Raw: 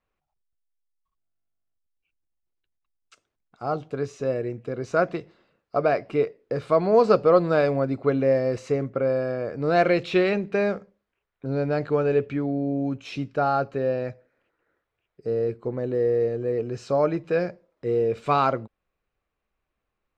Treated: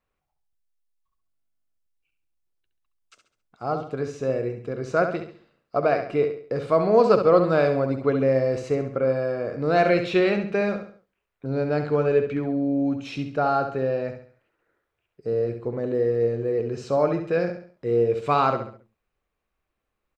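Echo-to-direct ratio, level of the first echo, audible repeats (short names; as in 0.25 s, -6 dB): -7.5 dB, -8.0 dB, 4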